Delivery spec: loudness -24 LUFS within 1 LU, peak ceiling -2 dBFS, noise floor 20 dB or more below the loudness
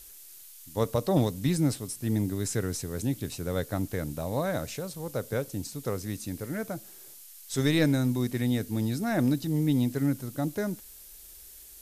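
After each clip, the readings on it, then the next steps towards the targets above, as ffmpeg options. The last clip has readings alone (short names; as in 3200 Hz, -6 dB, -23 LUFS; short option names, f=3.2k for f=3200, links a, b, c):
noise floor -49 dBFS; noise floor target -50 dBFS; loudness -29.5 LUFS; peak -12.5 dBFS; loudness target -24.0 LUFS
-> -af "afftdn=nr=6:nf=-49"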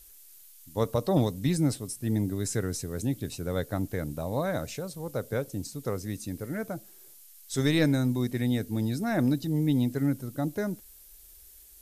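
noise floor -53 dBFS; loudness -29.5 LUFS; peak -12.5 dBFS; loudness target -24.0 LUFS
-> -af "volume=5.5dB"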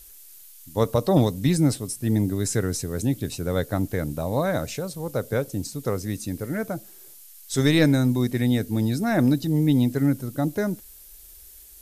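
loudness -24.0 LUFS; peak -7.0 dBFS; noise floor -47 dBFS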